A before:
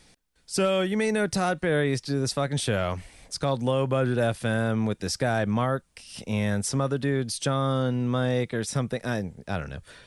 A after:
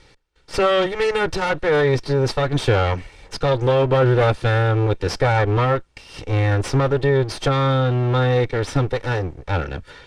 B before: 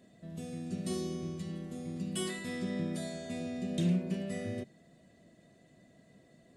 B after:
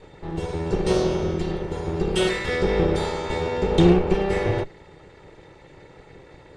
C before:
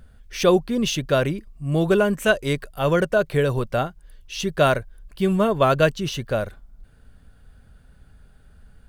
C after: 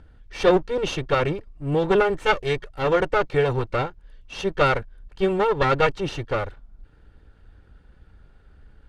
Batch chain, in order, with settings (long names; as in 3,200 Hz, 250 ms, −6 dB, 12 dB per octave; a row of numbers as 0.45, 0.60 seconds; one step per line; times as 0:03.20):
lower of the sound and its delayed copy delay 2.2 ms
Bessel low-pass filter 3,600 Hz, order 2
normalise the peak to −6 dBFS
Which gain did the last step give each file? +9.5, +17.5, +0.5 decibels